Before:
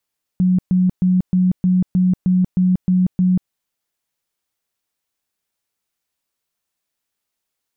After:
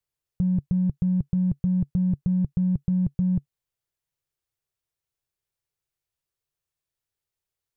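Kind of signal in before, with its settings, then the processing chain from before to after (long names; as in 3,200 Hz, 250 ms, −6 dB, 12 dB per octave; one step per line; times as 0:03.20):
tone bursts 183 Hz, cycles 34, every 0.31 s, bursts 10, −11.5 dBFS
drawn EQ curve 140 Hz 0 dB, 240 Hz −19 dB, 370 Hz −7 dB, 760 Hz −12 dB
in parallel at −10.5 dB: hard clipping −23 dBFS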